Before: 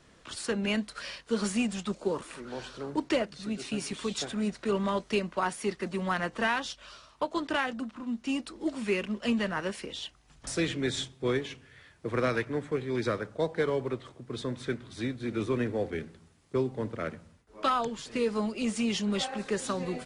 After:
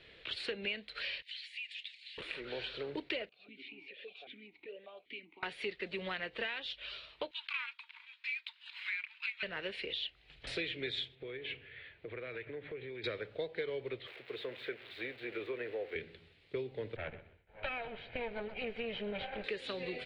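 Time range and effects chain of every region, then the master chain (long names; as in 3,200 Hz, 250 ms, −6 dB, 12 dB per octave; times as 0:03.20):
0:01.22–0:02.18: Butterworth high-pass 1,800 Hz 72 dB per octave + downward compressor 16 to 1, threshold −46 dBFS + hard clipping −40 dBFS
0:03.29–0:05.43: downward compressor 2.5 to 1, threshold −37 dBFS + formant filter that steps through the vowels 5.1 Hz
0:07.31–0:09.43: running median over 5 samples + Chebyshev high-pass filter 1,300 Hz, order 10 + frequency shifter −390 Hz
0:11.15–0:13.04: one scale factor per block 7 bits + low-pass filter 2,800 Hz + downward compressor 8 to 1, threshold −40 dBFS
0:14.07–0:15.96: spike at every zero crossing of −27.5 dBFS + three-way crossover with the lows and the highs turned down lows −15 dB, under 370 Hz, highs −20 dB, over 2,100 Hz
0:16.96–0:19.44: lower of the sound and its delayed copy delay 1.3 ms + low-pass filter 1,700 Hz + repeating echo 126 ms, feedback 24%, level −19 dB
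whole clip: drawn EQ curve 110 Hz 0 dB, 240 Hz −7 dB, 440 Hz +7 dB, 1,100 Hz −6 dB, 2,300 Hz +14 dB, 4,100 Hz +10 dB, 6,000 Hz −16 dB; downward compressor 4 to 1, threshold −33 dBFS; level −4 dB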